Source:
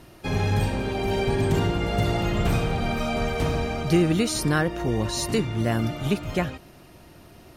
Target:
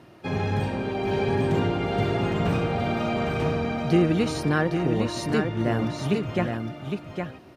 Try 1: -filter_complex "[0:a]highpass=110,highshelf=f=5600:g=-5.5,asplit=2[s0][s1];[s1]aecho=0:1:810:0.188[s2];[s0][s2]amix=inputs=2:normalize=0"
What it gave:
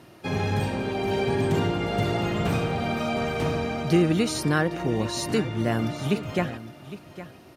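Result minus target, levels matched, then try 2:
8 kHz band +6.5 dB; echo-to-direct -9 dB
-filter_complex "[0:a]highpass=110,highshelf=f=5600:g=-17,asplit=2[s0][s1];[s1]aecho=0:1:810:0.531[s2];[s0][s2]amix=inputs=2:normalize=0"

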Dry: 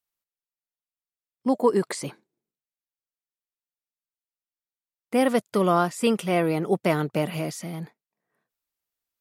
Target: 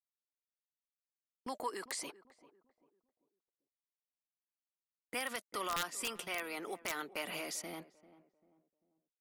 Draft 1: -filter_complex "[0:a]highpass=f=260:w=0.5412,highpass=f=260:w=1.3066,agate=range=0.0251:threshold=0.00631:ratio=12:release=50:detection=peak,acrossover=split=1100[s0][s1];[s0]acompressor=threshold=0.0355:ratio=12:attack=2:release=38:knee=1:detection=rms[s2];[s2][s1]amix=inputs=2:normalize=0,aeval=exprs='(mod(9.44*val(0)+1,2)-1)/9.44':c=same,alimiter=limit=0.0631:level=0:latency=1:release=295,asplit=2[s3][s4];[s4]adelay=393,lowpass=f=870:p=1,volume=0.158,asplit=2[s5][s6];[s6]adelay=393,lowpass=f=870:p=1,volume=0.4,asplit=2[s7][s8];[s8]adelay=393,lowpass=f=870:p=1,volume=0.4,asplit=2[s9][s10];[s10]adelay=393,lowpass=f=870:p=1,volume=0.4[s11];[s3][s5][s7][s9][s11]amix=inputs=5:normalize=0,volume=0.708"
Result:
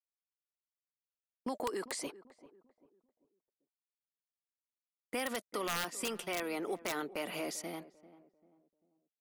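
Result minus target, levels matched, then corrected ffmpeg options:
compression: peak gain reduction -8.5 dB
-filter_complex "[0:a]highpass=f=260:w=0.5412,highpass=f=260:w=1.3066,agate=range=0.0251:threshold=0.00631:ratio=12:release=50:detection=peak,acrossover=split=1100[s0][s1];[s0]acompressor=threshold=0.0119:ratio=12:attack=2:release=38:knee=1:detection=rms[s2];[s2][s1]amix=inputs=2:normalize=0,aeval=exprs='(mod(9.44*val(0)+1,2)-1)/9.44':c=same,alimiter=limit=0.0631:level=0:latency=1:release=295,asplit=2[s3][s4];[s4]adelay=393,lowpass=f=870:p=1,volume=0.158,asplit=2[s5][s6];[s6]adelay=393,lowpass=f=870:p=1,volume=0.4,asplit=2[s7][s8];[s8]adelay=393,lowpass=f=870:p=1,volume=0.4,asplit=2[s9][s10];[s10]adelay=393,lowpass=f=870:p=1,volume=0.4[s11];[s3][s5][s7][s9][s11]amix=inputs=5:normalize=0,volume=0.708"

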